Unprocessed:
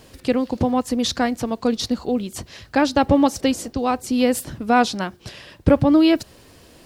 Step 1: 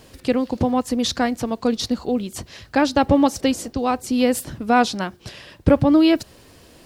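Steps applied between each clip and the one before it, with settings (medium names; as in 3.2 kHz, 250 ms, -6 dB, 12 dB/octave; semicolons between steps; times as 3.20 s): no audible change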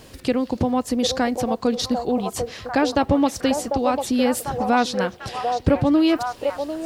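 compression 1.5:1, threshold -26 dBFS, peak gain reduction 6.5 dB; repeats whose band climbs or falls 746 ms, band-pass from 610 Hz, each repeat 0.7 oct, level -2 dB; trim +2.5 dB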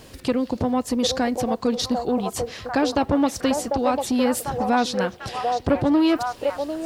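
transformer saturation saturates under 460 Hz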